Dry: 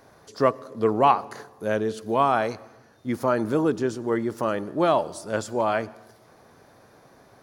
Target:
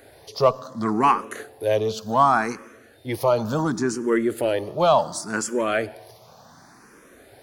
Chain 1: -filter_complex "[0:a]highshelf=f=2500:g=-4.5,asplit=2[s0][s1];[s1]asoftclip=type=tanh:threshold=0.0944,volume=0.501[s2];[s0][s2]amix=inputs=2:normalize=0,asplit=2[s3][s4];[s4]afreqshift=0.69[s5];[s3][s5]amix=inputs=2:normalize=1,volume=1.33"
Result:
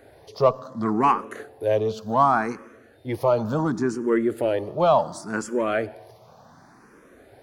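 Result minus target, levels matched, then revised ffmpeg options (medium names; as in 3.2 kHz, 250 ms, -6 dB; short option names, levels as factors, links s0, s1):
4 kHz band -6.0 dB
-filter_complex "[0:a]highshelf=f=2500:g=6,asplit=2[s0][s1];[s1]asoftclip=type=tanh:threshold=0.0944,volume=0.501[s2];[s0][s2]amix=inputs=2:normalize=0,asplit=2[s3][s4];[s4]afreqshift=0.69[s5];[s3][s5]amix=inputs=2:normalize=1,volume=1.33"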